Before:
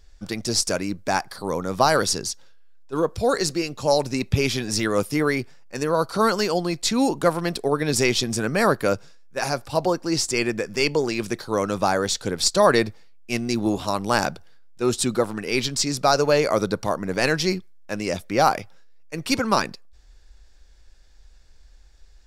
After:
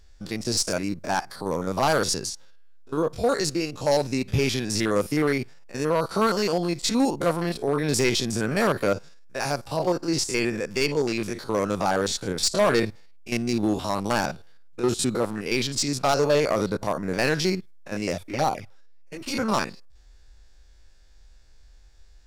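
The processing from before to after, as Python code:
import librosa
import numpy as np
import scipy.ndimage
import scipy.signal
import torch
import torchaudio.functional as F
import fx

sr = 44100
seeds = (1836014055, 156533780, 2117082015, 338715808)

y = fx.spec_steps(x, sr, hold_ms=50)
y = fx.env_flanger(y, sr, rest_ms=7.0, full_db=-16.5, at=(18.15, 19.32), fade=0.02)
y = np.clip(10.0 ** (15.0 / 20.0) * y, -1.0, 1.0) / 10.0 ** (15.0 / 20.0)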